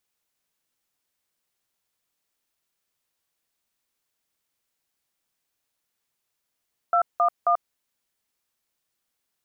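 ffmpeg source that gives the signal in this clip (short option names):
-f lavfi -i "aevalsrc='0.106*clip(min(mod(t,0.268),0.088-mod(t,0.268))/0.002,0,1)*(eq(floor(t/0.268),0)*(sin(2*PI*697*mod(t,0.268))+sin(2*PI*1336*mod(t,0.268)))+eq(floor(t/0.268),1)*(sin(2*PI*697*mod(t,0.268))+sin(2*PI*1209*mod(t,0.268)))+eq(floor(t/0.268),2)*(sin(2*PI*697*mod(t,0.268))+sin(2*PI*1209*mod(t,0.268))))':d=0.804:s=44100"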